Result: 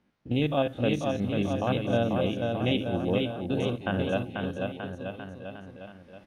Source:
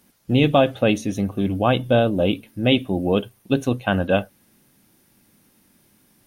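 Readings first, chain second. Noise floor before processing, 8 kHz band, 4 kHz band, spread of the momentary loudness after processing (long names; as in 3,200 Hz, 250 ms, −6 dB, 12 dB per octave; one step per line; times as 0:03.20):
−60 dBFS, can't be measured, −8.0 dB, 14 LU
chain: spectrum averaged block by block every 50 ms
camcorder AGC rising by 6.3 dB per second
low-pass that shuts in the quiet parts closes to 2,700 Hz, open at −15 dBFS
bouncing-ball delay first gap 490 ms, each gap 0.9×, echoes 5
level −8.5 dB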